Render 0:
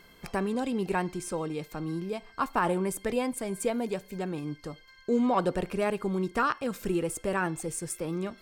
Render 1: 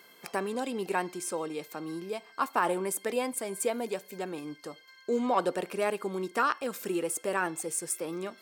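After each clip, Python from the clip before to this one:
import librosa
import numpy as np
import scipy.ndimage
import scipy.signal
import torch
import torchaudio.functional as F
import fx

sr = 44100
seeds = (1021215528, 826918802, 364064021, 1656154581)

y = scipy.signal.sosfilt(scipy.signal.butter(2, 310.0, 'highpass', fs=sr, output='sos'), x)
y = fx.high_shelf(y, sr, hz=8500.0, db=7.0)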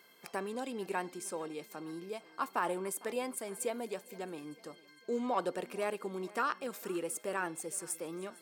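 y = fx.echo_feedback(x, sr, ms=454, feedback_pct=49, wet_db=-21.5)
y = F.gain(torch.from_numpy(y), -6.0).numpy()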